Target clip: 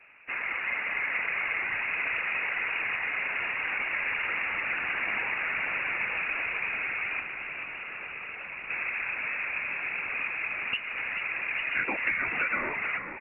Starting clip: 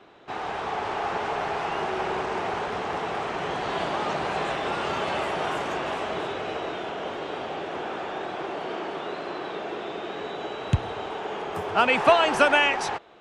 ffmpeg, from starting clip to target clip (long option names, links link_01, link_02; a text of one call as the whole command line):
ffmpeg -i in.wav -filter_complex "[0:a]asplit=2[link_01][link_02];[link_02]acrusher=bits=5:mix=0:aa=0.5,volume=-8dB[link_03];[link_01][link_03]amix=inputs=2:normalize=0,acompressor=threshold=-26dB:ratio=4,asettb=1/sr,asplit=3[link_04][link_05][link_06];[link_04]atrim=end=7.204[link_07];[link_05]atrim=start=7.2:end=8.7,asetpts=PTS-STARTPTS,afade=type=in:duration=0.004:curve=qsin,afade=type=out:start_time=1.496:duration=0.004:curve=qsin,equalizer=frequency=750:width=0.42:gain=-9.5[link_08];[link_06]atrim=start=8.696[link_09];[link_07][link_08]acrossfade=duration=0.004:curve1=hsin:curve2=qsin[link_10];[link_10][link_09]acrossfade=duration=0.004:curve1=qsin:curve2=hsin,lowpass=frequency=2500:width_type=q:width=0.5098,lowpass=frequency=2500:width_type=q:width=0.6013,lowpass=frequency=2500:width_type=q:width=0.9,lowpass=frequency=2500:width_type=q:width=2.563,afreqshift=-2900,afftfilt=real='hypot(re,im)*cos(2*PI*random(0))':imag='hypot(re,im)*sin(2*PI*random(1))':win_size=512:overlap=0.75,asplit=2[link_11][link_12];[link_12]asplit=6[link_13][link_14][link_15][link_16][link_17][link_18];[link_13]adelay=436,afreqshift=-55,volume=-8.5dB[link_19];[link_14]adelay=872,afreqshift=-110,volume=-13.9dB[link_20];[link_15]adelay=1308,afreqshift=-165,volume=-19.2dB[link_21];[link_16]adelay=1744,afreqshift=-220,volume=-24.6dB[link_22];[link_17]adelay=2180,afreqshift=-275,volume=-29.9dB[link_23];[link_18]adelay=2616,afreqshift=-330,volume=-35.3dB[link_24];[link_19][link_20][link_21][link_22][link_23][link_24]amix=inputs=6:normalize=0[link_25];[link_11][link_25]amix=inputs=2:normalize=0,volume=4dB" out.wav